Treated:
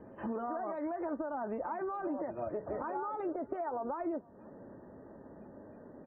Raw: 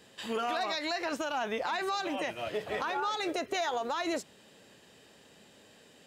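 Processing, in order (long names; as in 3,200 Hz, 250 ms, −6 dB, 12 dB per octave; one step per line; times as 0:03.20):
low-pass filter 1,300 Hz 24 dB per octave
tilt shelving filter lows +4.5 dB, about 760 Hz
comb filter 3.3 ms, depth 32%
downward compressor 5 to 1, threshold −42 dBFS, peak gain reduction 15 dB
feedback echo with a high-pass in the loop 472 ms, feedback 34%, high-pass 1,000 Hz, level −22.5 dB
level +7 dB
MP3 16 kbit/s 24,000 Hz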